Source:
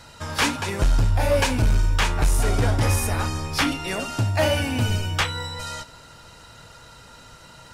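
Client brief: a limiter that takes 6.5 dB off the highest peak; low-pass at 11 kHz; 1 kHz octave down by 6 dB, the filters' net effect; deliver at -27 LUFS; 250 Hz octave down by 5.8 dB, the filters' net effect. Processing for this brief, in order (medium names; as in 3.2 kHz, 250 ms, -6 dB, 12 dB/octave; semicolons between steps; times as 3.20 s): low-pass 11 kHz; peaking EQ 250 Hz -7 dB; peaking EQ 1 kHz -7.5 dB; trim +0.5 dB; peak limiter -17.5 dBFS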